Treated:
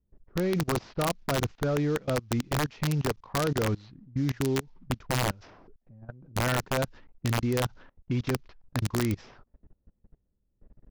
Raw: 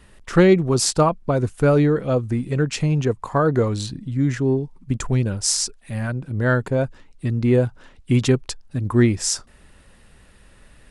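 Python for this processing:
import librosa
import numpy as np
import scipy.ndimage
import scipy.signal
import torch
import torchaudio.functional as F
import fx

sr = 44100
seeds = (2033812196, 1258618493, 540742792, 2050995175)

y = fx.cvsd(x, sr, bps=32000)
y = fx.level_steps(y, sr, step_db=24)
y = fx.env_lowpass(y, sr, base_hz=340.0, full_db=-24.5)
y = (np.mod(10.0 ** (17.5 / 20.0) * y + 1.0, 2.0) - 1.0) / 10.0 ** (17.5 / 20.0)
y = y * librosa.db_to_amplitude(-2.0)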